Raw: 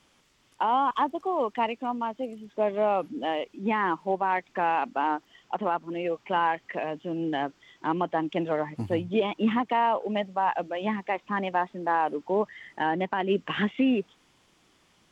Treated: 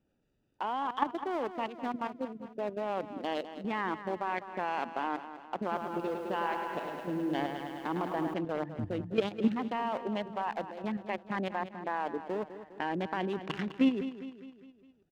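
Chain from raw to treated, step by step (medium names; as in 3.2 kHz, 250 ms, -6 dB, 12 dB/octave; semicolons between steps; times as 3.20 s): local Wiener filter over 41 samples; treble shelf 2.3 kHz +5.5 dB; level held to a coarse grid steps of 11 dB; feedback delay 204 ms, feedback 51%, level -12 dB; 5.57–8.34 s: bit-crushed delay 106 ms, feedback 80%, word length 10-bit, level -6 dB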